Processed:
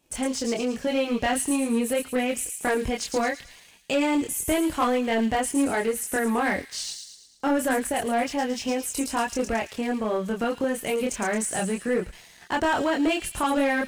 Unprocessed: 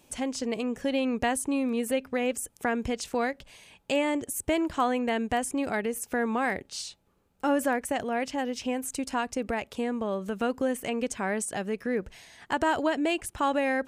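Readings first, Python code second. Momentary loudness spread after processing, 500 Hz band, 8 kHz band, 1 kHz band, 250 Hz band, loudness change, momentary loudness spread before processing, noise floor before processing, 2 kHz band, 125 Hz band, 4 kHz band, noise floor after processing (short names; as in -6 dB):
5 LU, +3.0 dB, +6.0 dB, +3.0 dB, +3.5 dB, +3.5 dB, 6 LU, -66 dBFS, +3.5 dB, +4.0 dB, +4.5 dB, -52 dBFS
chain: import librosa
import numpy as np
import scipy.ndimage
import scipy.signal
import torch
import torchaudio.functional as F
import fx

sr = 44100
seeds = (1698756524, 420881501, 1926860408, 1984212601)

y = fx.chorus_voices(x, sr, voices=6, hz=0.3, base_ms=25, depth_ms=3.5, mix_pct=45)
y = fx.leveller(y, sr, passes=2)
y = fx.echo_wet_highpass(y, sr, ms=111, feedback_pct=50, hz=4000.0, wet_db=-4.0)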